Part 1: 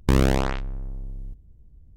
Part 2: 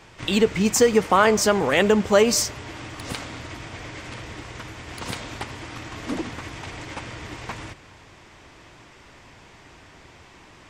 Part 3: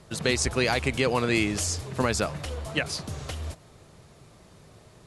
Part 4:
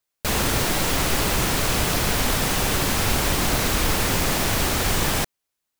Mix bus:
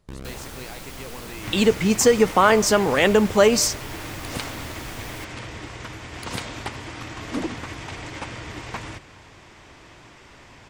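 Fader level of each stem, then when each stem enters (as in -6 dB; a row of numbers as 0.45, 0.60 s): -19.5, +1.0, -16.0, -17.0 dB; 0.00, 1.25, 0.00, 0.00 s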